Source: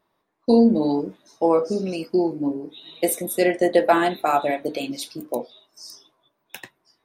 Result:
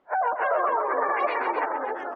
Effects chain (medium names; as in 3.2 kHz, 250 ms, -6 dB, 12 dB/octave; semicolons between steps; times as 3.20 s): reverse spectral sustain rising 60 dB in 0.35 s; high-pass 64 Hz 24 dB/octave; tilt EQ -4.5 dB/octave; spectral gate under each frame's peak -20 dB strong; peak limiter -9.5 dBFS, peak gain reduction 10.5 dB; compression, threshold -20 dBFS, peak gain reduction 7.5 dB; crackle 360 per s -48 dBFS; wide varispeed 3.27×; Bessel low-pass 1.1 kHz, order 2; on a send: loudspeakers at several distances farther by 44 m -8 dB, 89 m -7 dB; on the sum: ever faster or slower copies 250 ms, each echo -5 st, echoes 2, each echo -6 dB